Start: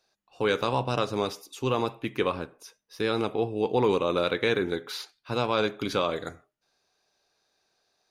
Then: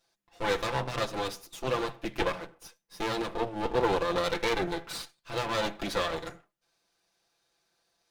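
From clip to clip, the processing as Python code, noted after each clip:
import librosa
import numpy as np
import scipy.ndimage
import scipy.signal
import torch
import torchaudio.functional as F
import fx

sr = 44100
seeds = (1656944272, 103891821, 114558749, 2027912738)

y = fx.lower_of_two(x, sr, delay_ms=5.9)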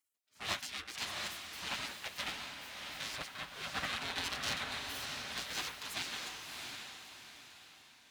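y = fx.spec_gate(x, sr, threshold_db=-20, keep='weak')
y = scipy.signal.sosfilt(scipy.signal.butter(2, 51.0, 'highpass', fs=sr, output='sos'), y)
y = fx.echo_diffused(y, sr, ms=662, feedback_pct=41, wet_db=-3.5)
y = F.gain(torch.from_numpy(y), 1.0).numpy()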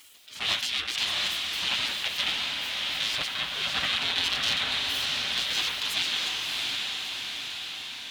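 y = fx.peak_eq(x, sr, hz=3300.0, db=11.5, octaves=0.99)
y = fx.env_flatten(y, sr, amount_pct=50)
y = F.gain(torch.from_numpy(y), 2.0).numpy()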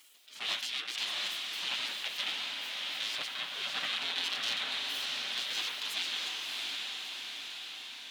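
y = scipy.signal.sosfilt(scipy.signal.butter(2, 240.0, 'highpass', fs=sr, output='sos'), x)
y = F.gain(torch.from_numpy(y), -7.0).numpy()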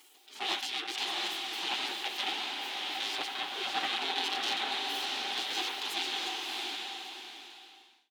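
y = fx.fade_out_tail(x, sr, length_s=1.55)
y = fx.peak_eq(y, sr, hz=140.0, db=-13.5, octaves=0.29)
y = fx.small_body(y, sr, hz=(360.0, 780.0), ring_ms=35, db=17)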